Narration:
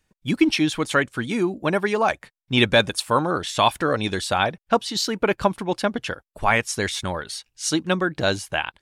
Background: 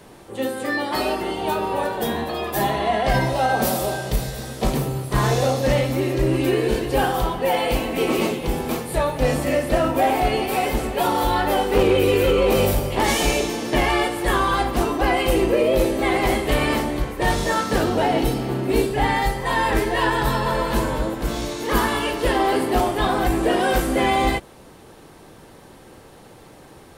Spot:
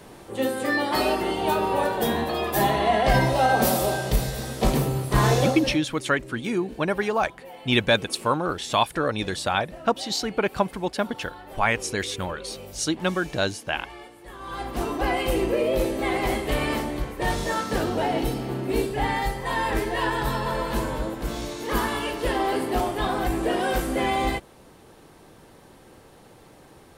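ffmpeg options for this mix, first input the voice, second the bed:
-filter_complex "[0:a]adelay=5150,volume=0.708[s0];[1:a]volume=7.5,afade=t=out:st=5.32:d=0.48:silence=0.0749894,afade=t=in:st=14.38:d=0.56:silence=0.133352[s1];[s0][s1]amix=inputs=2:normalize=0"

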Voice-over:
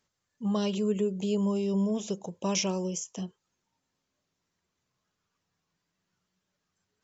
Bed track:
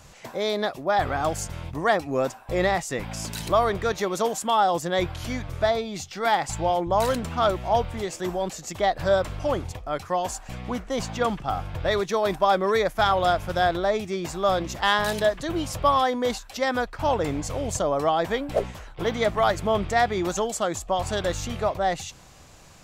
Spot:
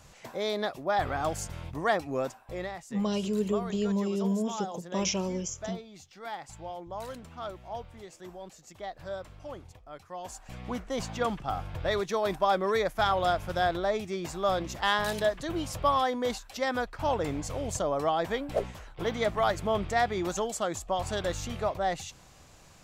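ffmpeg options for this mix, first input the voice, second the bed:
-filter_complex "[0:a]adelay=2500,volume=0.891[s0];[1:a]volume=2.11,afade=t=out:st=2.06:d=0.67:silence=0.266073,afade=t=in:st=10.12:d=0.6:silence=0.266073[s1];[s0][s1]amix=inputs=2:normalize=0"

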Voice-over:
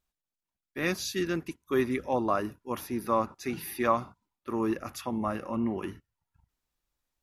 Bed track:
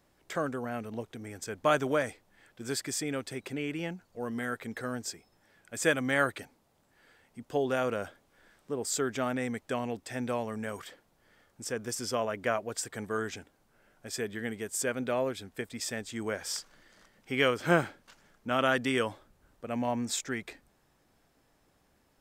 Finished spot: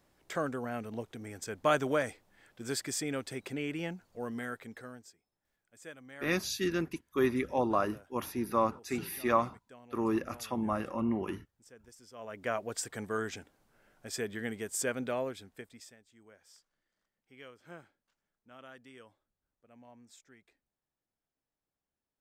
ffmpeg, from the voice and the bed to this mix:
-filter_complex "[0:a]adelay=5450,volume=0.841[s0];[1:a]volume=8.41,afade=t=out:st=4.13:d=1:silence=0.1,afade=t=in:st=12.14:d=0.51:silence=0.1,afade=t=out:st=14.88:d=1.09:silence=0.0668344[s1];[s0][s1]amix=inputs=2:normalize=0"

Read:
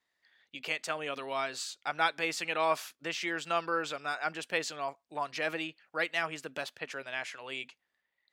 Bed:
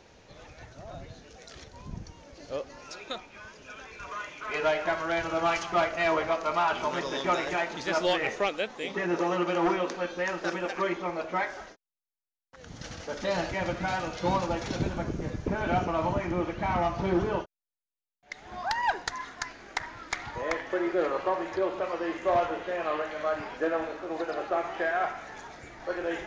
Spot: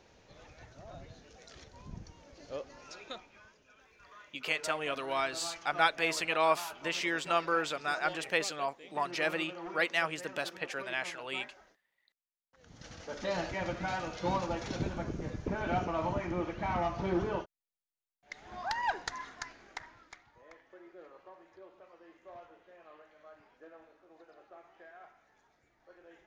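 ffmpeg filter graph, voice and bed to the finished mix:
-filter_complex "[0:a]adelay=3800,volume=1.19[s0];[1:a]volume=2.11,afade=t=out:st=3.01:d=0.64:silence=0.266073,afade=t=in:st=12.45:d=0.77:silence=0.237137,afade=t=out:st=19.19:d=1.05:silence=0.0944061[s1];[s0][s1]amix=inputs=2:normalize=0"

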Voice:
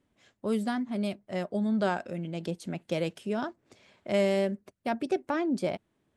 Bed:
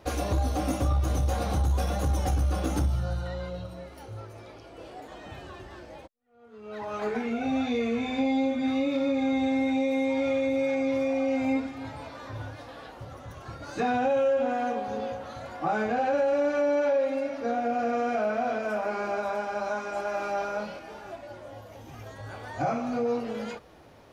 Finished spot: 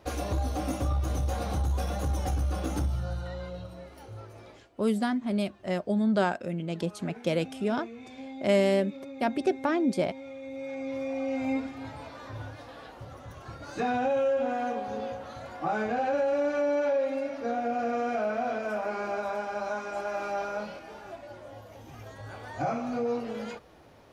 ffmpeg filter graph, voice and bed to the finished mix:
-filter_complex "[0:a]adelay=4350,volume=1.33[s0];[1:a]volume=3.55,afade=t=out:st=4.48:d=0.21:silence=0.223872,afade=t=in:st=10.38:d=1.28:silence=0.199526[s1];[s0][s1]amix=inputs=2:normalize=0"

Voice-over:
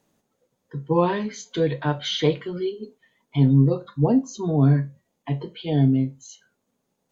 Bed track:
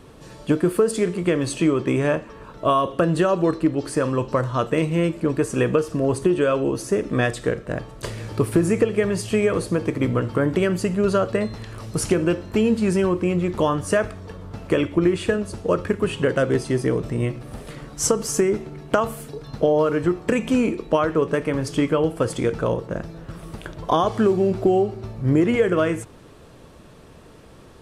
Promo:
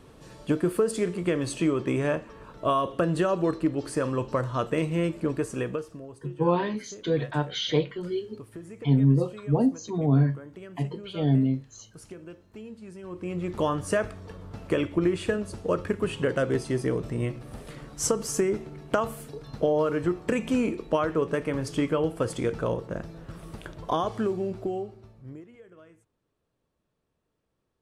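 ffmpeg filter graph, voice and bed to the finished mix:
-filter_complex "[0:a]adelay=5500,volume=0.668[s0];[1:a]volume=4.22,afade=t=out:st=5.25:d=0.83:silence=0.125893,afade=t=in:st=13.02:d=0.63:silence=0.125893,afade=t=out:st=23.57:d=1.9:silence=0.0446684[s1];[s0][s1]amix=inputs=2:normalize=0"

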